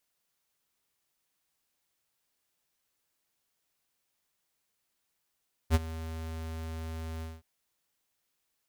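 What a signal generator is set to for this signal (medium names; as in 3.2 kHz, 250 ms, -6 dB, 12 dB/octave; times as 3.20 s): ADSR square 80.7 Hz, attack 49 ms, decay 31 ms, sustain -17.5 dB, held 1.52 s, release 201 ms -20.5 dBFS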